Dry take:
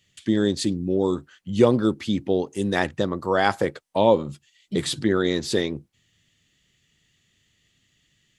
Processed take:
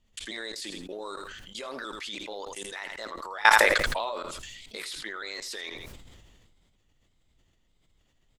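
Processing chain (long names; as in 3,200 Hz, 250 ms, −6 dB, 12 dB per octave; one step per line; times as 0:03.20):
pitch shifter gated in a rhythm +1.5 semitones, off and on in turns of 307 ms
high-pass filter 1,000 Hz 12 dB per octave
dynamic equaliser 1,800 Hz, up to +3 dB, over −40 dBFS, Q 0.91
output level in coarse steps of 22 dB
background noise brown −75 dBFS
on a send: repeating echo 82 ms, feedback 22%, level −16.5 dB
on the sum: level that may fall only so fast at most 28 dB per second
level +6 dB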